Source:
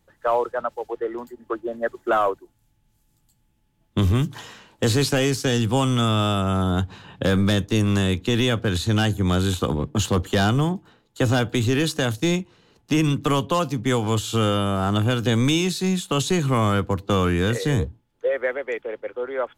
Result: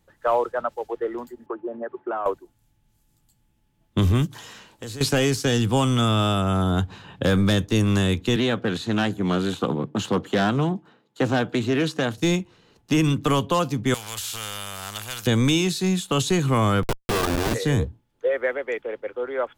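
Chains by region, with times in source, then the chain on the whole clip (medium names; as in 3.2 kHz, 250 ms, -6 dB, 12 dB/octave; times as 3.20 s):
1.46–2.26 s: compression 3:1, threshold -30 dBFS + cabinet simulation 140–2500 Hz, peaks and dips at 390 Hz +5 dB, 880 Hz +8 dB, 2 kHz -5 dB
4.26–5.01 s: treble shelf 4.3 kHz +6 dB + compression 3:1, threshold -38 dBFS
8.36–12.18 s: high-pass 140 Hz 24 dB/octave + treble shelf 5.2 kHz -12 dB + loudspeaker Doppler distortion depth 0.16 ms
13.94–15.27 s: amplifier tone stack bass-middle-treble 10-0-10 + spectrum-flattening compressor 2:1
16.83–17.54 s: LPC vocoder at 8 kHz pitch kept + Schmitt trigger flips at -29.5 dBFS
whole clip: none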